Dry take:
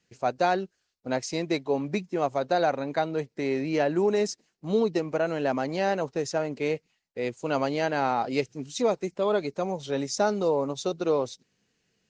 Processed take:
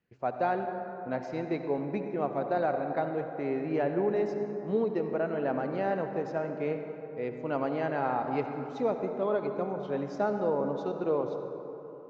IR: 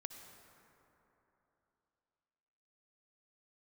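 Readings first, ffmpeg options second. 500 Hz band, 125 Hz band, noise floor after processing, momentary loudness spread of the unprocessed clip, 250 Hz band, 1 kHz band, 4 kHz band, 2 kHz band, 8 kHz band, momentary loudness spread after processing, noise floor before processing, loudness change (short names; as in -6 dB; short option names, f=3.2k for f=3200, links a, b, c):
-3.0 dB, -3.0 dB, -43 dBFS, 7 LU, -3.5 dB, -3.5 dB, under -15 dB, -6.0 dB, under -25 dB, 7 LU, -76 dBFS, -4.0 dB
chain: -filter_complex "[0:a]lowpass=1.9k[a];[1:a]atrim=start_sample=2205[b];[a][b]afir=irnorm=-1:irlink=0"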